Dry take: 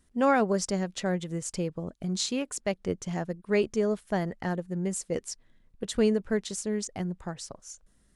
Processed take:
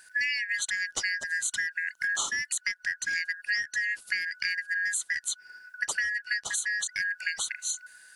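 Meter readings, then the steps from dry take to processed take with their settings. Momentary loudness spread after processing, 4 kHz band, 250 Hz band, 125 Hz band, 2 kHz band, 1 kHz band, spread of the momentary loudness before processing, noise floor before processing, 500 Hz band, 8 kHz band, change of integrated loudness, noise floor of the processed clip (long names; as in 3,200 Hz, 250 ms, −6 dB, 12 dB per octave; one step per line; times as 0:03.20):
3 LU, +4.5 dB, below −30 dB, below −25 dB, +14.0 dB, −13.5 dB, 14 LU, −65 dBFS, below −25 dB, +6.0 dB, +0.5 dB, −59 dBFS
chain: band-splitting scrambler in four parts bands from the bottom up 3142
high-shelf EQ 2,400 Hz +10.5 dB
downward compressor 10 to 1, threshold −34 dBFS, peak gain reduction 20.5 dB
level +7 dB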